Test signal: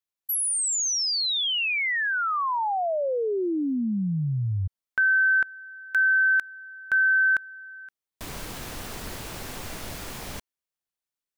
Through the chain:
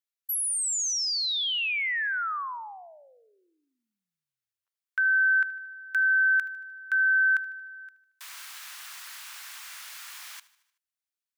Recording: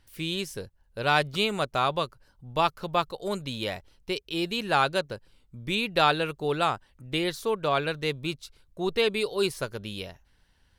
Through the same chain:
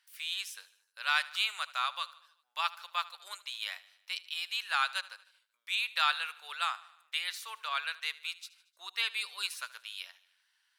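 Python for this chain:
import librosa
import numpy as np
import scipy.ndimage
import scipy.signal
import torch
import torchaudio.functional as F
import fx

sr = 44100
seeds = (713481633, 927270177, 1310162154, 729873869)

p1 = scipy.signal.sosfilt(scipy.signal.butter(4, 1200.0, 'highpass', fs=sr, output='sos'), x)
p2 = p1 + fx.echo_feedback(p1, sr, ms=76, feedback_pct=56, wet_db=-19, dry=0)
y = p2 * 10.0 ** (-2.5 / 20.0)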